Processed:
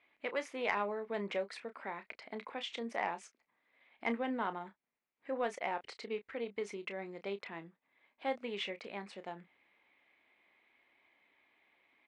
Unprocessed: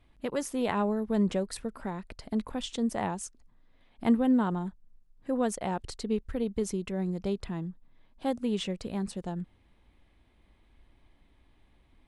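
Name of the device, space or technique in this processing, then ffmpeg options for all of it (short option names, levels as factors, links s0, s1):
intercom: -filter_complex "[0:a]highpass=490,lowpass=3600,equalizer=f=2200:t=o:w=0.49:g=11.5,asoftclip=type=tanh:threshold=0.168,asplit=2[s0][s1];[s1]adelay=30,volume=0.282[s2];[s0][s2]amix=inputs=2:normalize=0,volume=0.708"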